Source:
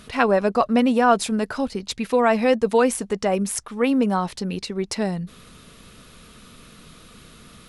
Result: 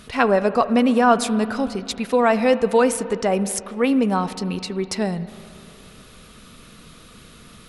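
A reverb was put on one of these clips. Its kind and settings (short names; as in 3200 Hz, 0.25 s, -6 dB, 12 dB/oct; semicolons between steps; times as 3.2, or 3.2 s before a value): spring tank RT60 2.7 s, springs 37/60 ms, chirp 45 ms, DRR 13.5 dB; gain +1 dB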